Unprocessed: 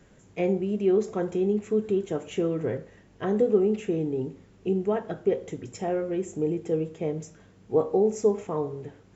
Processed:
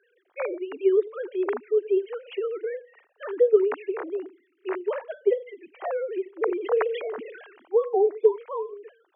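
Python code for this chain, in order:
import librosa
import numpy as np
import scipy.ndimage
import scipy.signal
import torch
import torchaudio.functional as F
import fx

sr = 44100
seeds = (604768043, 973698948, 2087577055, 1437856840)

y = fx.sine_speech(x, sr)
y = scipy.signal.sosfilt(scipy.signal.butter(2, 630.0, 'highpass', fs=sr, output='sos'), y)
y = fx.sustainer(y, sr, db_per_s=50.0, at=(6.41, 7.75))
y = y * librosa.db_to_amplitude(8.0)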